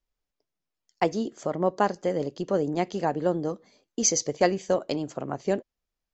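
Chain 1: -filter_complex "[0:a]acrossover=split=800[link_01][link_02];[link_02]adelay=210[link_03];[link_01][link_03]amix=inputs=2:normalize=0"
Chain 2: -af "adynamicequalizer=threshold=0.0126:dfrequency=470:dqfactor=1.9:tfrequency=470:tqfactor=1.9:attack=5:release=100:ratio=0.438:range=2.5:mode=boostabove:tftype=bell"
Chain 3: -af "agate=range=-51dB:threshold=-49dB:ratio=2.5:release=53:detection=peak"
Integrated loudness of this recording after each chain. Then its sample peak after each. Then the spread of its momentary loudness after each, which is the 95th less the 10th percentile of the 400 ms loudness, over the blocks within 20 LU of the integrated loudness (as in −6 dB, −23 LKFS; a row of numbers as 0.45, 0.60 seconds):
−28.5, −25.0, −27.5 LKFS; −9.5, −6.5, −7.5 dBFS; 10, 7, 8 LU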